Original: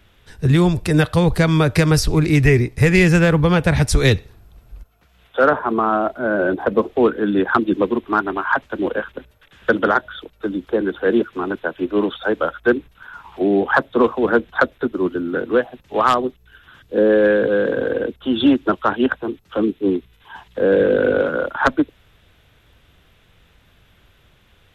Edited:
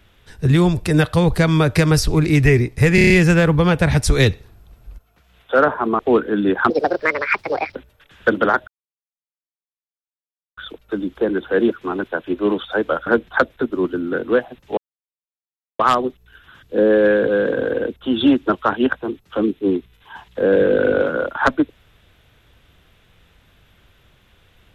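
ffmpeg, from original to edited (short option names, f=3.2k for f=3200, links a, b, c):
-filter_complex "[0:a]asplit=12[a][b][c][d][e][f][g][h][i][j][k][l];[a]atrim=end=2.982[m];[b]atrim=start=2.948:end=2.982[n];[c]atrim=start=2.948:end=2.982[o];[d]atrim=start=2.948:end=2.982[p];[e]atrim=start=2.948:end=2.982[q];[f]atrim=start=2.948:end=5.842[r];[g]atrim=start=6.888:end=7.604[s];[h]atrim=start=7.6:end=9.17,asetpts=PTS-STARTPTS,asetrate=65709,aresample=44100[t];[i]atrim=start=9.166:end=10.09,asetpts=PTS-STARTPTS,afade=t=out:st=0.92:d=0.004:c=hsin,apad=pad_dur=1.9[u];[j]atrim=start=10.09:end=12.582,asetpts=PTS-STARTPTS,afade=t=in:d=0.004:c=hsin[v];[k]atrim=start=14.278:end=15.99,asetpts=PTS-STARTPTS,afade=t=out:st=1.708:d=0.004:c=hsin,apad=pad_dur=1.02[w];[l]atrim=start=15.99,asetpts=PTS-STARTPTS,afade=t=in:d=0.004:c=hsin[x];[m][n]acrossfade=d=0.004:c1=hsin:c2=hsin[y];[y][o]acrossfade=d=0.004:c1=hsin:c2=hsin[z];[z][p]acrossfade=d=0.004:c1=hsin:c2=hsin[aa];[aa][q]acrossfade=d=0.004:c1=hsin:c2=hsin[ab];[ab][r]acrossfade=d=0.004:c1=hsin:c2=hsin[ac];[ac][s]acrossfade=d=0.004:c1=hsin:c2=hsin[ad];[ad][t]acrossfade=d=0.004:c1=hsin:c2=hsin[ae];[u][v]concat=n=2:v=0:a=1[af];[ae][af]acrossfade=d=0.004:c1=hsin:c2=hsin[ag];[w][x]concat=n=2:v=0:a=1[ah];[ag][ah]acrossfade=d=0.004:c1=hsin:c2=hsin"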